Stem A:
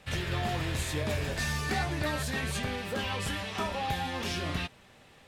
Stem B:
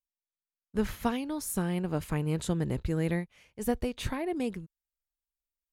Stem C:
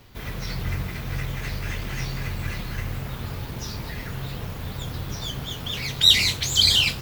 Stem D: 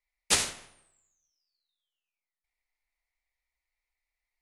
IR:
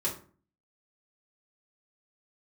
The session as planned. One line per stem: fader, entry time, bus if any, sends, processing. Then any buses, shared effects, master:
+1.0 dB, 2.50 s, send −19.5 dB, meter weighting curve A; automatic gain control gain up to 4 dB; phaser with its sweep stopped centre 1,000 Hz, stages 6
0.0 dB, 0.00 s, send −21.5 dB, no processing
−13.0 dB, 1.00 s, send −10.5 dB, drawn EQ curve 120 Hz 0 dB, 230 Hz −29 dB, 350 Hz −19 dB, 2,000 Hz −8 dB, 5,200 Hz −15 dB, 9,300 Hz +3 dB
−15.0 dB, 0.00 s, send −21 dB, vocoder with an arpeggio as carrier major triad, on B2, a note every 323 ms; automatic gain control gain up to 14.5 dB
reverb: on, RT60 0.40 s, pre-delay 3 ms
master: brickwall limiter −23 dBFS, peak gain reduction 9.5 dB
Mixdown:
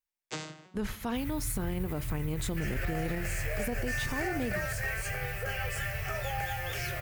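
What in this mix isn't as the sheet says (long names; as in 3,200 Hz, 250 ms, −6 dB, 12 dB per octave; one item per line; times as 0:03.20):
stem A: missing automatic gain control gain up to 4 dB
stem C −13.0 dB → −5.5 dB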